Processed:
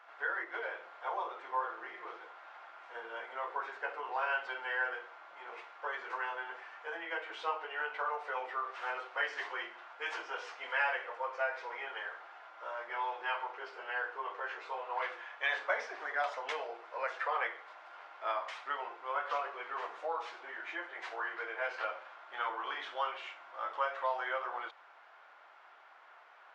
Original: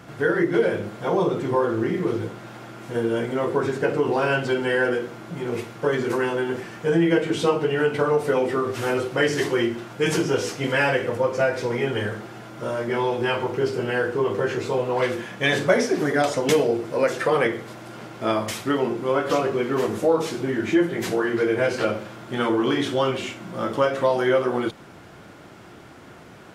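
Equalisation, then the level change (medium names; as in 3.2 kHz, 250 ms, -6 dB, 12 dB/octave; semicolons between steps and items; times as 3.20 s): high-pass 830 Hz 24 dB/octave; tape spacing loss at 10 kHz 37 dB; -2.5 dB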